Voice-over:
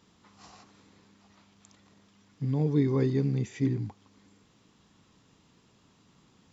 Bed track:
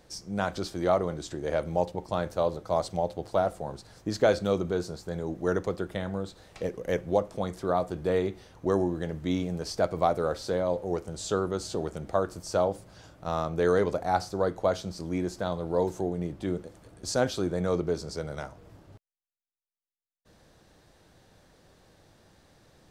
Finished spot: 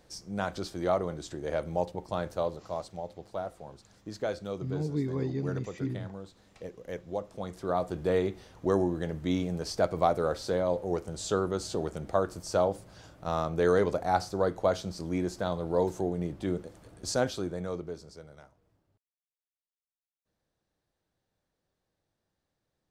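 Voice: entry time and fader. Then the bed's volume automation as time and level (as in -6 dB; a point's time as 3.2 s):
2.20 s, -6.0 dB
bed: 2.37 s -3 dB
2.86 s -10 dB
7.09 s -10 dB
7.94 s -0.5 dB
17.08 s -0.5 dB
19.02 s -23.5 dB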